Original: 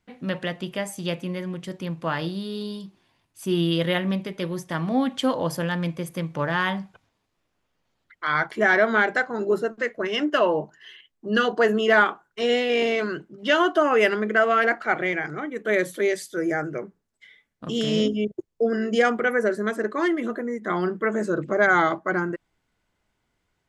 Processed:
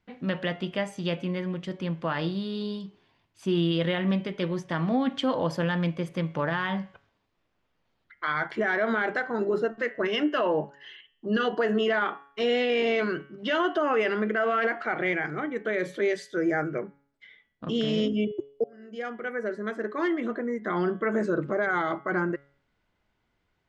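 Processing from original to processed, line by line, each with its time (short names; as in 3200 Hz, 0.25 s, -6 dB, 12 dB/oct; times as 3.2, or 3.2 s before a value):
16.68–17.89 air absorption 56 m
18.64–20.77 fade in
whole clip: limiter -17 dBFS; LPF 4400 Hz 12 dB/oct; de-hum 140.1 Hz, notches 24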